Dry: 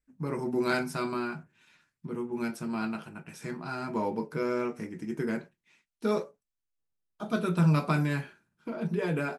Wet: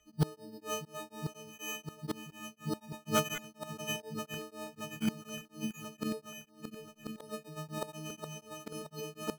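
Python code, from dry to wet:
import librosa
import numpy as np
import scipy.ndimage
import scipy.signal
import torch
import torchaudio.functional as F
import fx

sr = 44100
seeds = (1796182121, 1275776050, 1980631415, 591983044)

y = fx.freq_snap(x, sr, grid_st=6)
y = fx.low_shelf(y, sr, hz=220.0, db=-4.0)
y = fx.small_body(y, sr, hz=(550.0, 1900.0), ring_ms=30, db=18)
y = fx.gate_flip(y, sr, shuts_db=-25.0, range_db=-29)
y = fx.peak_eq(y, sr, hz=490.0, db=-4.5, octaves=2.1)
y = fx.echo_swing(y, sr, ms=1036, ratio=1.5, feedback_pct=51, wet_db=-8)
y = np.clip(10.0 ** (34.5 / 20.0) * y, -1.0, 1.0) / 10.0 ** (34.5 / 20.0)
y = np.repeat(scipy.signal.resample_poly(y, 1, 8), 8)[:len(y)]
y = fx.formant_shift(y, sr, semitones=-3)
y = y * np.abs(np.cos(np.pi * 4.1 * np.arange(len(y)) / sr))
y = F.gain(torch.from_numpy(y), 14.0).numpy()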